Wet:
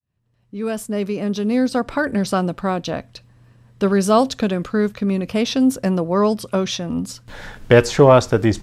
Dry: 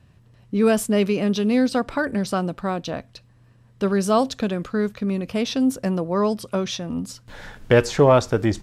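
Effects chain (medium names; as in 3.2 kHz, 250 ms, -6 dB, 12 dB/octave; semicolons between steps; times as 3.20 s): fade-in on the opening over 2.26 s; 0.82–1.86 s: peaking EQ 2.9 kHz -4.5 dB 0.94 oct; trim +4 dB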